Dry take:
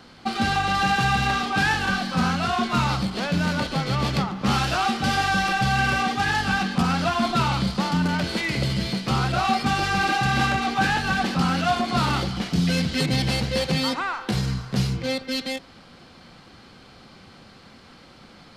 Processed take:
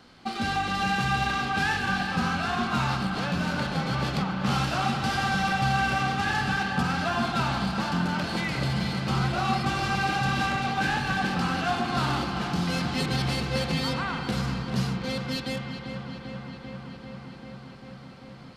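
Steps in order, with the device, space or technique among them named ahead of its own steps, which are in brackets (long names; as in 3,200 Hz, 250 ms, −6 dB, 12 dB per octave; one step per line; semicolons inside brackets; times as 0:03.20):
dub delay into a spring reverb (feedback echo with a low-pass in the loop 393 ms, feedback 83%, low-pass 5,000 Hz, level −10.5 dB; spring reverb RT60 3.4 s, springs 37 ms, chirp 70 ms, DRR 5.5 dB)
level −5.5 dB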